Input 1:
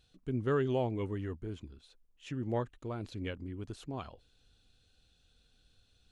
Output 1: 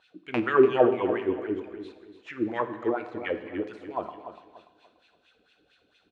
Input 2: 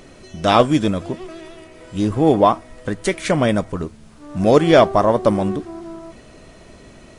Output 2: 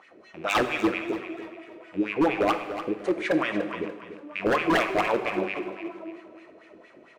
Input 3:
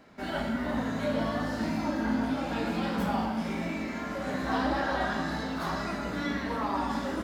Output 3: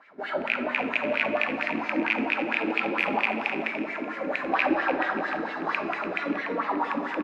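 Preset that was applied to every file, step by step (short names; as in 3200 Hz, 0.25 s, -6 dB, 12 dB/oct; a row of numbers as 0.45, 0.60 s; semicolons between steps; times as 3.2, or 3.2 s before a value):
rattling part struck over -31 dBFS, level -16 dBFS; low shelf 64 Hz -10.5 dB; in parallel at -9.5 dB: hard clip -17 dBFS; on the sum: wah 4.4 Hz 320–2400 Hz, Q 3.7; wavefolder -16 dBFS; on a send: feedback echo 0.291 s, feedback 33%, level -11 dB; on the sum: non-linear reverb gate 0.41 s falling, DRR 8.5 dB; match loudness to -27 LUFS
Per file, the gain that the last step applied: +17.5, 0.0, +8.5 dB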